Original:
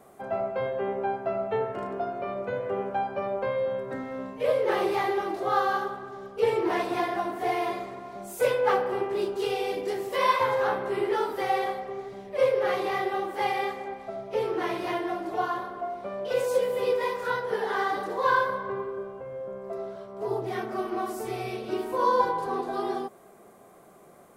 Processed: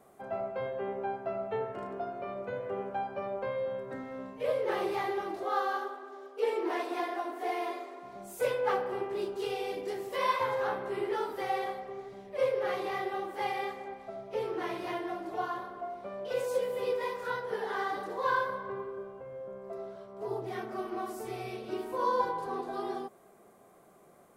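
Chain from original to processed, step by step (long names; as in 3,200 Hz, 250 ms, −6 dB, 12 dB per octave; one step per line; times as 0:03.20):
0:05.44–0:08.03: linear-phase brick-wall high-pass 240 Hz
level −6 dB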